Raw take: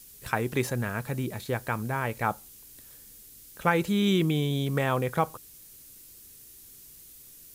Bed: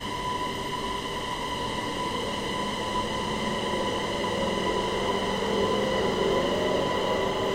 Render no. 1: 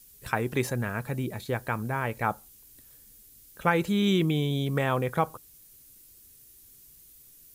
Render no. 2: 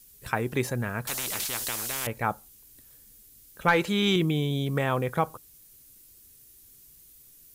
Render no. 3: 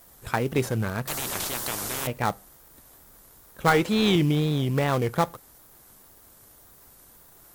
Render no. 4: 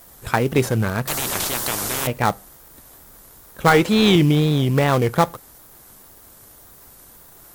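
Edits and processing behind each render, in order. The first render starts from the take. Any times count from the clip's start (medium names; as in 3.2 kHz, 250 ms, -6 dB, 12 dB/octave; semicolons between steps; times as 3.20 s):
noise reduction 6 dB, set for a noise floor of -51 dBFS
1.07–2.07 s: spectrum-flattening compressor 10:1; 3.68–4.16 s: overdrive pedal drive 12 dB, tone 4.9 kHz, clips at -9.5 dBFS
wow and flutter 130 cents; in parallel at -6.5 dB: sample-rate reducer 2.7 kHz, jitter 20%
trim +6.5 dB; peak limiter -2 dBFS, peak gain reduction 2 dB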